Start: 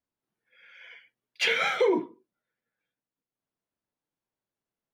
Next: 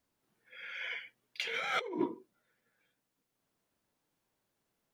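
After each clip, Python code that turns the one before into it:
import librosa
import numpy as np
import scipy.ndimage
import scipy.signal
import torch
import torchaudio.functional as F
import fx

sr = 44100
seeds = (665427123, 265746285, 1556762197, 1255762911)

y = fx.over_compress(x, sr, threshold_db=-36.0, ratio=-1.0)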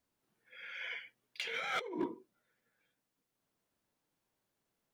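y = np.clip(10.0 ** (26.0 / 20.0) * x, -1.0, 1.0) / 10.0 ** (26.0 / 20.0)
y = y * librosa.db_to_amplitude(-2.5)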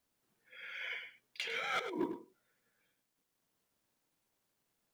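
y = fx.quant_companded(x, sr, bits=8)
y = y + 10.0 ** (-10.5 / 20.0) * np.pad(y, (int(102 * sr / 1000.0), 0))[:len(y)]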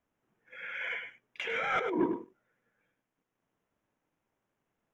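y = fx.leveller(x, sr, passes=1)
y = np.convolve(y, np.full(10, 1.0 / 10))[:len(y)]
y = y * librosa.db_to_amplitude(6.0)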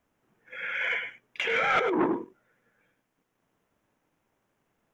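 y = fx.transformer_sat(x, sr, knee_hz=720.0)
y = y * librosa.db_to_amplitude(7.5)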